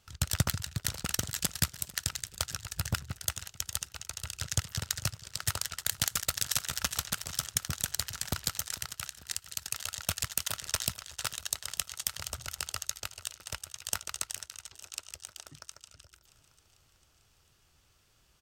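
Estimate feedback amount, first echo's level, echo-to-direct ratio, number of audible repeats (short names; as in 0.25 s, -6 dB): 60%, -18.5 dB, -16.5 dB, 4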